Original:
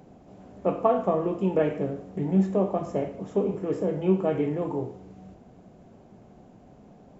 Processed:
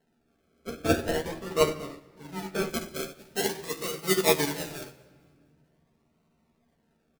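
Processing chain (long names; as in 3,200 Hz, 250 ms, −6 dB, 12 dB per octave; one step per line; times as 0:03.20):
mains-hum notches 50/100/150/200/250/300 Hz
sample-and-hold swept by an LFO 37×, swing 60% 0.44 Hz
0:02.69–0:05.05: high-shelf EQ 2,900 Hz +11.5 dB
repeating echo 224 ms, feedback 50%, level −21.5 dB
convolution reverb RT60 2.0 s, pre-delay 4 ms, DRR 2.5 dB
transient designer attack −5 dB, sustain 0 dB
double-tracking delay 13 ms −5 dB
expander for the loud parts 2.5 to 1, over −31 dBFS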